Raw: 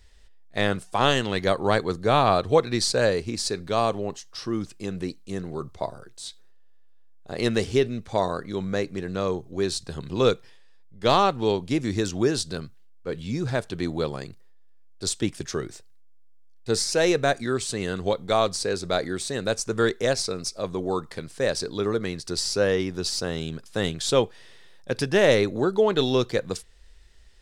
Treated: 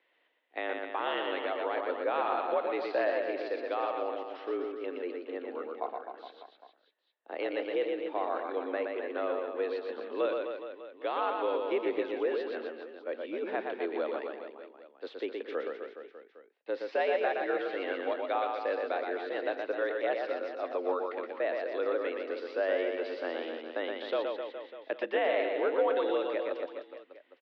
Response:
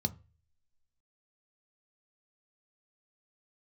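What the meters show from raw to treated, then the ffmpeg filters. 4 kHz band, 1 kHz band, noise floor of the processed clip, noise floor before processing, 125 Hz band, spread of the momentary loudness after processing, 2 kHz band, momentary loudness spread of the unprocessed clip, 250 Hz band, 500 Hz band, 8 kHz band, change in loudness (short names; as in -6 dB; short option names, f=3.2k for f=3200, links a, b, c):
-16.0 dB, -6.5 dB, -68 dBFS, -48 dBFS, under -35 dB, 11 LU, -6.5 dB, 13 LU, -12.0 dB, -6.0 dB, under -40 dB, -8.0 dB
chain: -af "alimiter=limit=-15dB:level=0:latency=1:release=199,aecho=1:1:120|258|416.7|599.2|809.1:0.631|0.398|0.251|0.158|0.1,highpass=f=240:t=q:w=0.5412,highpass=f=240:t=q:w=1.307,lowpass=f=3k:t=q:w=0.5176,lowpass=f=3k:t=q:w=0.7071,lowpass=f=3k:t=q:w=1.932,afreqshift=80,volume=-5dB"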